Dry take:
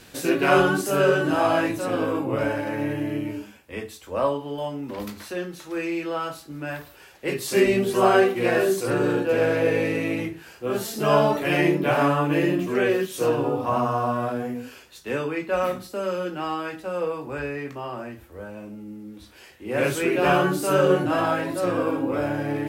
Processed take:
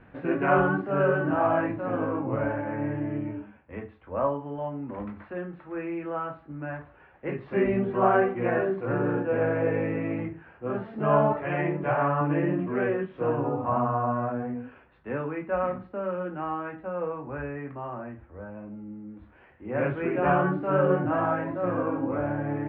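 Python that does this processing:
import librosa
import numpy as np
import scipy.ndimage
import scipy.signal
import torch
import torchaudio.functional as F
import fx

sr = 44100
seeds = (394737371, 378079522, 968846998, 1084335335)

y = fx.peak_eq(x, sr, hz=240.0, db=-10.5, octaves=0.77, at=(11.32, 12.21))
y = scipy.signal.sosfilt(scipy.signal.bessel(6, 1300.0, 'lowpass', norm='mag', fs=sr, output='sos'), y)
y = fx.peak_eq(y, sr, hz=400.0, db=-6.0, octaves=0.95)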